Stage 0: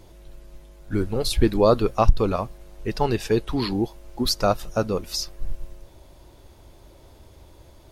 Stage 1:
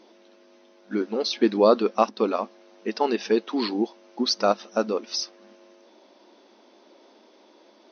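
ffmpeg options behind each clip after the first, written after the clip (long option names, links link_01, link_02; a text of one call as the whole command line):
ffmpeg -i in.wav -af "afftfilt=real='re*between(b*sr/4096,200,6300)':imag='im*between(b*sr/4096,200,6300)':win_size=4096:overlap=0.75" out.wav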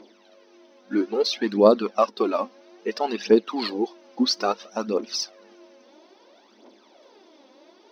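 ffmpeg -i in.wav -filter_complex "[0:a]asplit=2[link_01][link_02];[link_02]alimiter=limit=-15dB:level=0:latency=1:release=215,volume=-2dB[link_03];[link_01][link_03]amix=inputs=2:normalize=0,aphaser=in_gain=1:out_gain=1:delay=4:decay=0.61:speed=0.6:type=triangular,volume=-5.5dB" out.wav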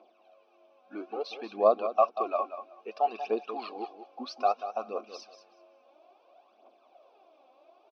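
ffmpeg -i in.wav -filter_complex "[0:a]asplit=3[link_01][link_02][link_03];[link_01]bandpass=frequency=730:width_type=q:width=8,volume=0dB[link_04];[link_02]bandpass=frequency=1090:width_type=q:width=8,volume=-6dB[link_05];[link_03]bandpass=frequency=2440:width_type=q:width=8,volume=-9dB[link_06];[link_04][link_05][link_06]amix=inputs=3:normalize=0,aecho=1:1:187|374|561:0.282|0.0535|0.0102,volume=3.5dB" out.wav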